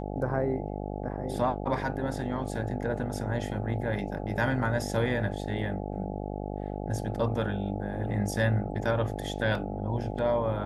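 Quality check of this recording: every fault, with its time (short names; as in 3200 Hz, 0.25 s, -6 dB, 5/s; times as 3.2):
buzz 50 Hz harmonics 17 -35 dBFS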